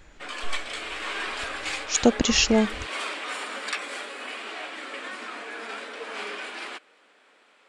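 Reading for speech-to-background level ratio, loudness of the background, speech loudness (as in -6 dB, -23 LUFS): 11.0 dB, -33.0 LUFS, -22.0 LUFS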